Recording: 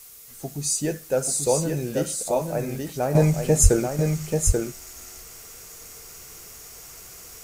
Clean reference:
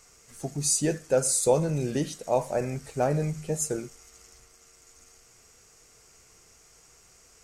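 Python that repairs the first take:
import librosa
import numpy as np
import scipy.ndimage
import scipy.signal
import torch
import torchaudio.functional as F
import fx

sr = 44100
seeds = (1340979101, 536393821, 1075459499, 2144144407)

y = fx.fix_deplosive(x, sr, at_s=(3.62,))
y = fx.noise_reduce(y, sr, print_start_s=0.0, print_end_s=0.5, reduce_db=14.0)
y = fx.fix_echo_inverse(y, sr, delay_ms=836, level_db=-4.5)
y = fx.fix_level(y, sr, at_s=3.15, step_db=-10.0)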